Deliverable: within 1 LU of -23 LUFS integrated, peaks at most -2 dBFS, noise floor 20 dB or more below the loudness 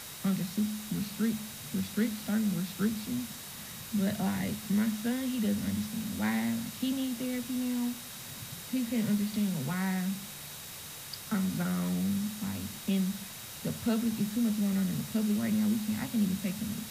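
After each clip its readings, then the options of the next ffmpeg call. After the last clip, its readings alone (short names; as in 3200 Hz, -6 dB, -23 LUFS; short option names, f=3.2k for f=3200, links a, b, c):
steady tone 3800 Hz; tone level -54 dBFS; noise floor -44 dBFS; noise floor target -53 dBFS; loudness -32.5 LUFS; peak -17.5 dBFS; loudness target -23.0 LUFS
-> -af "bandreject=f=3.8k:w=30"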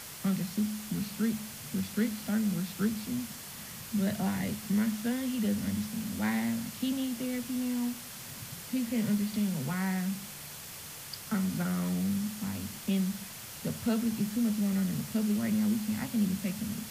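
steady tone none; noise floor -44 dBFS; noise floor target -53 dBFS
-> -af "afftdn=nr=9:nf=-44"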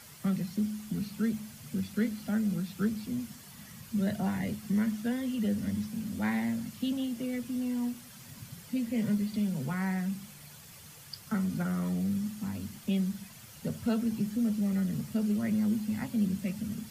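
noise floor -51 dBFS; noise floor target -53 dBFS
-> -af "afftdn=nr=6:nf=-51"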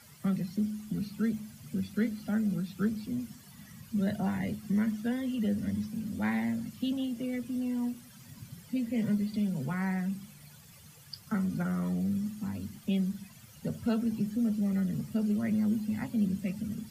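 noise floor -54 dBFS; loudness -32.5 LUFS; peak -18.5 dBFS; loudness target -23.0 LUFS
-> -af "volume=9.5dB"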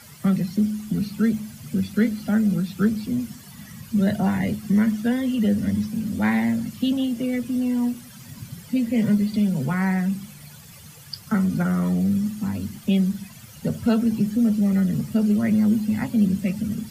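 loudness -23.0 LUFS; peak -9.0 dBFS; noise floor -44 dBFS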